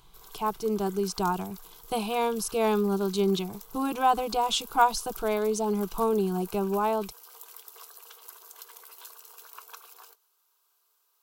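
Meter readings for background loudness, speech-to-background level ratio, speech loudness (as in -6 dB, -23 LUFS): -46.0 LUFS, 18.5 dB, -27.5 LUFS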